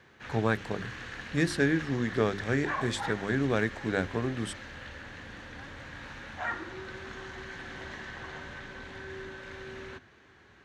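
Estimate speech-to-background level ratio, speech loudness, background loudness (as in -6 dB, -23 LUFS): 10.0 dB, -30.5 LUFS, -40.5 LUFS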